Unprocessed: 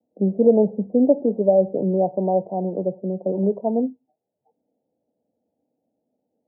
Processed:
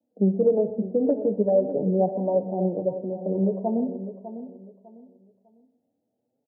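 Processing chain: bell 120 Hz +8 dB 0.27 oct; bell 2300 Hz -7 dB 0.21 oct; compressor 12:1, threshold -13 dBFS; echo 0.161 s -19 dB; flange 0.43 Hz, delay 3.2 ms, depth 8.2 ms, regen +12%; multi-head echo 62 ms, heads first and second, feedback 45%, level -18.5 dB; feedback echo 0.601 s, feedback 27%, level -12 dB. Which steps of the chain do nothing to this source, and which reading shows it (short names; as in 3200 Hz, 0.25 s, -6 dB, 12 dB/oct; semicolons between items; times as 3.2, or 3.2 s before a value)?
bell 2300 Hz: input band ends at 960 Hz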